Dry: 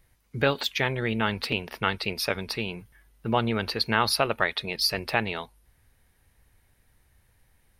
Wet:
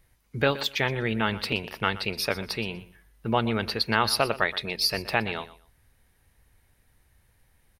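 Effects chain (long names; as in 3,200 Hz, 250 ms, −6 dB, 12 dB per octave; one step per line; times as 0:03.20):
repeating echo 122 ms, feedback 20%, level −16.5 dB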